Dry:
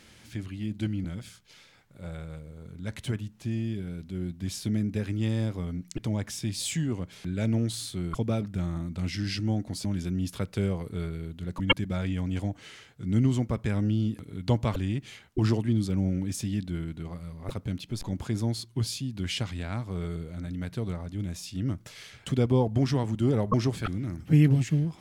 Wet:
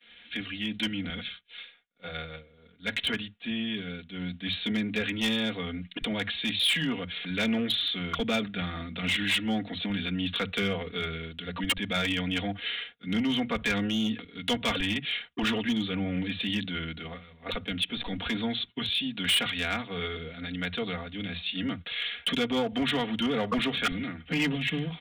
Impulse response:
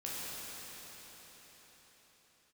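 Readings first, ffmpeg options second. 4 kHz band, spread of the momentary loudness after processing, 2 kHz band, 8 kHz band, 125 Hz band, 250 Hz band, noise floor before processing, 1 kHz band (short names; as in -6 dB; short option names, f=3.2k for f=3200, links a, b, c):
+10.5 dB, 10 LU, +9.5 dB, -3.5 dB, -11.0 dB, -1.0 dB, -55 dBFS, +3.5 dB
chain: -filter_complex "[0:a]equalizer=f=1k:t=o:w=0.38:g=-8,acrossover=split=160[a][b];[a]adelay=50[c];[c][b]amix=inputs=2:normalize=0,acrossover=split=340|670|1800[d][e][f][g];[e]asoftclip=type=tanh:threshold=-38.5dB[h];[d][h][f][g]amix=inputs=4:normalize=0,alimiter=limit=-20.5dB:level=0:latency=1:release=128,aecho=1:1:4.2:0.77,aresample=8000,aresample=44100,lowshelf=f=410:g=-11,crystalizer=i=5.5:c=0,volume=28.5dB,asoftclip=hard,volume=-28.5dB,agate=range=-33dB:threshold=-42dB:ratio=3:detection=peak,volume=7dB"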